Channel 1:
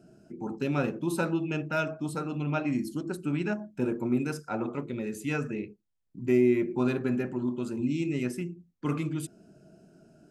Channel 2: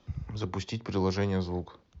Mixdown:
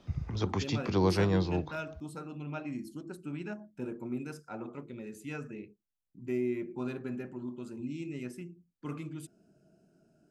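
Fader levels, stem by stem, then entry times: -9.5, +1.5 dB; 0.00, 0.00 s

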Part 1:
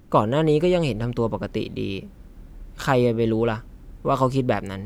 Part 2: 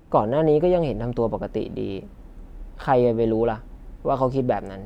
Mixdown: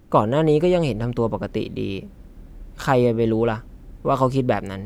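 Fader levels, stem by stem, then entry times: -0.5, -10.5 dB; 0.00, 0.00 s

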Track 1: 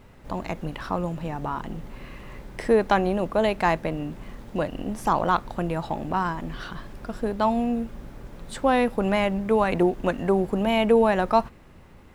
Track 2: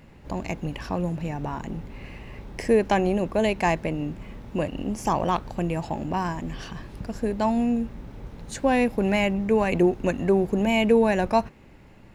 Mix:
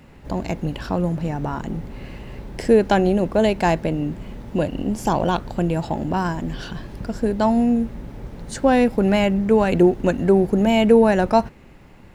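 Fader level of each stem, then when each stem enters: -2.5, +2.5 dB; 0.00, 0.00 s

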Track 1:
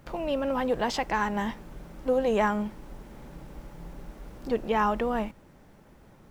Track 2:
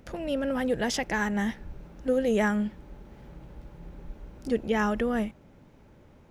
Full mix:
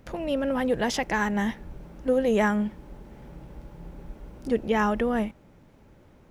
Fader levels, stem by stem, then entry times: -8.5, -0.5 dB; 0.00, 0.00 s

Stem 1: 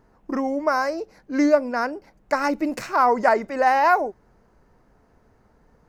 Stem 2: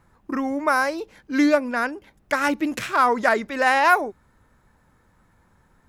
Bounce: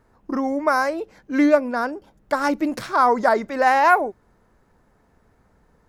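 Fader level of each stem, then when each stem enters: -2.5, -5.5 dB; 0.00, 0.00 s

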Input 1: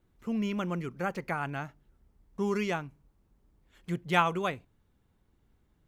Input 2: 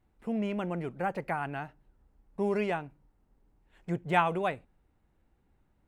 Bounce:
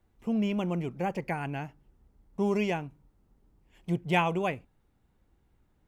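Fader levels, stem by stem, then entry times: -3.0, -1.5 dB; 0.00, 0.00 s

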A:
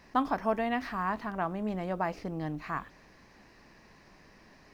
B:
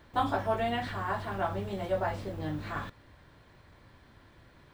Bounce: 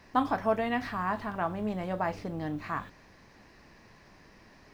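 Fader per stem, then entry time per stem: +0.5, -8.5 dB; 0.00, 0.00 s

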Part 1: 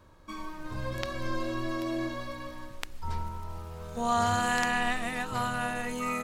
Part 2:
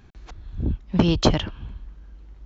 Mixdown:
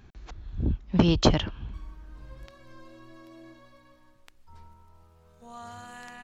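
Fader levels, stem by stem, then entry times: -17.0, -2.0 dB; 1.45, 0.00 s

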